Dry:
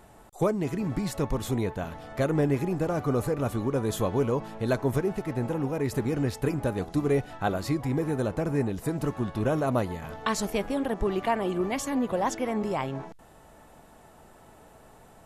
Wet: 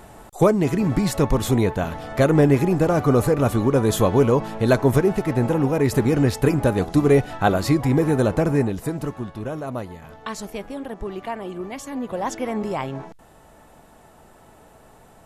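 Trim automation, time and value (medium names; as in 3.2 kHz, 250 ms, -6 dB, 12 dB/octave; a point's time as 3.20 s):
8.41 s +9 dB
9.45 s -3.5 dB
11.82 s -3.5 dB
12.43 s +3 dB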